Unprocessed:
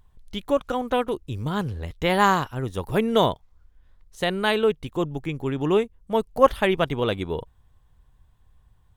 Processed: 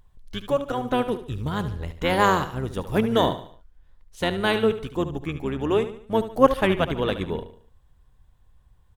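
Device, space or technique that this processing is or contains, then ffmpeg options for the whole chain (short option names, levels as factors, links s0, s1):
octave pedal: -filter_complex "[0:a]aecho=1:1:73|146|219|292:0.251|0.103|0.0422|0.0173,asplit=2[s0][s1];[s1]asetrate=22050,aresample=44100,atempo=2,volume=0.398[s2];[s0][s2]amix=inputs=2:normalize=0,volume=0.891"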